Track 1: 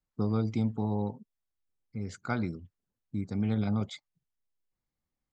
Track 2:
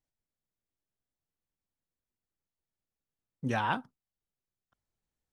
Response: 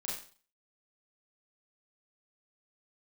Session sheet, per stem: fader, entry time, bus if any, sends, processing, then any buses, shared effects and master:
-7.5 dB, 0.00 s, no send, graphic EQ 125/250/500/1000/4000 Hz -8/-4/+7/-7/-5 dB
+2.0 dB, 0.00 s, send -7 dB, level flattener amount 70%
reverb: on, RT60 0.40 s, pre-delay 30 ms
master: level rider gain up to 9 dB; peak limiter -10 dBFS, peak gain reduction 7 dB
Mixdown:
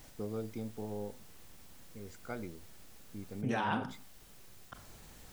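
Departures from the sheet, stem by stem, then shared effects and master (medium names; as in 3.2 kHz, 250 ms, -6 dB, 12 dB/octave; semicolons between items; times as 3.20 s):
stem 2 +2.0 dB -> -7.5 dB; master: missing level rider gain up to 9 dB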